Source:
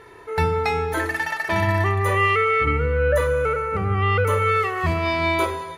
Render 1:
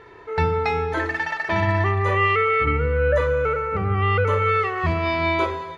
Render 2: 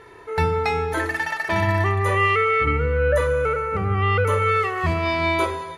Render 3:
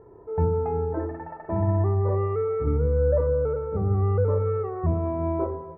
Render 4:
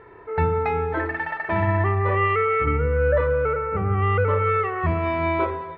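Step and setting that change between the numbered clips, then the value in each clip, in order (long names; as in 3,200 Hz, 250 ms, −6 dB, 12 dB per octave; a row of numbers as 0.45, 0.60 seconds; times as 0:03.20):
Bessel low-pass filter, frequency: 4,400, 11,000, 570, 1,700 Hertz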